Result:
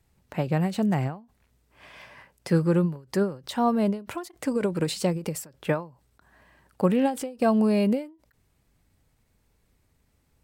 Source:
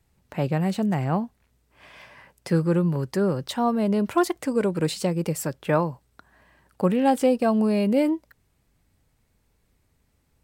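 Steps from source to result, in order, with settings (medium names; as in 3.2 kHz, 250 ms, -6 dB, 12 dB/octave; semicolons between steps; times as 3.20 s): endings held to a fixed fall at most 160 dB/s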